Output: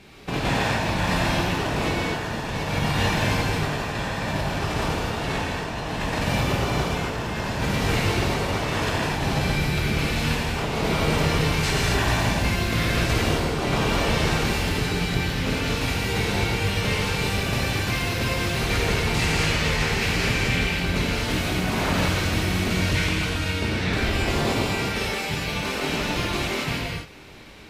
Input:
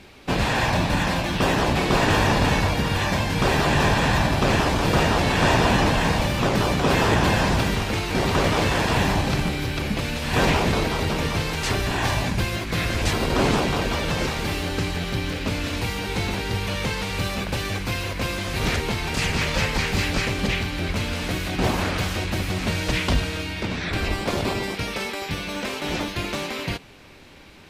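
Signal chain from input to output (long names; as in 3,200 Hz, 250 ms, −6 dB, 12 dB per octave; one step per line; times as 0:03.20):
compressor whose output falls as the input rises −23 dBFS, ratio −0.5
reverb whose tail is shaped and stops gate 300 ms flat, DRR −4.5 dB
level −5 dB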